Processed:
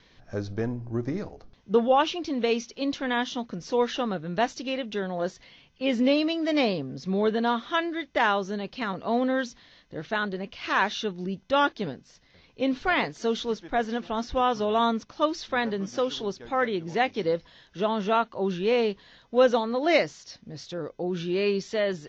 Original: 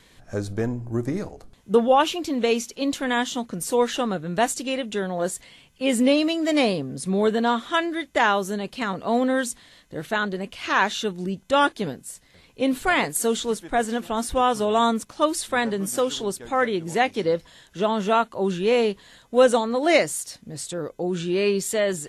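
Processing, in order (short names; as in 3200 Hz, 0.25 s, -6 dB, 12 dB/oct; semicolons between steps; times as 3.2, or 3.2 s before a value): steep low-pass 6100 Hz 72 dB/oct; gain -3.5 dB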